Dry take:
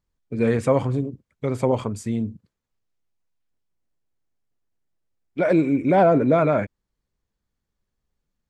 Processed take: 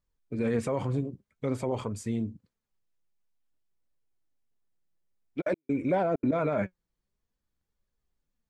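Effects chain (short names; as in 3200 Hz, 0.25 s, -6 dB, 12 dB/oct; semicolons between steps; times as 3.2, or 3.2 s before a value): limiter -14.5 dBFS, peak gain reduction 8 dB; flange 0.51 Hz, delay 1.6 ms, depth 4.6 ms, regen +67%; 5.4–6.31 step gate ".x..xxxxxx" 195 bpm -60 dB; stuck buffer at 7.52, samples 2048, times 1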